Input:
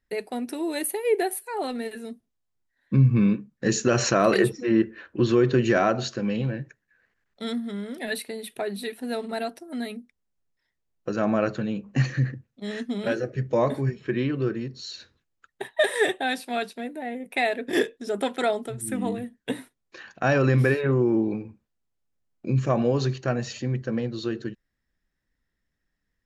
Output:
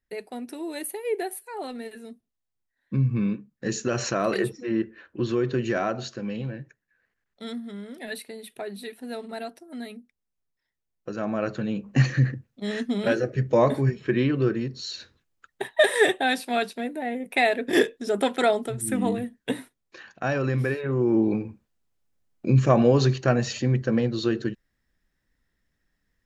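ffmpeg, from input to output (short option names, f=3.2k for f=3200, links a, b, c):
-af "volume=12.5dB,afade=t=in:st=11.34:d=0.63:silence=0.398107,afade=t=out:st=19.2:d=1.15:silence=0.398107,afade=t=in:st=20.89:d=0.48:silence=0.334965"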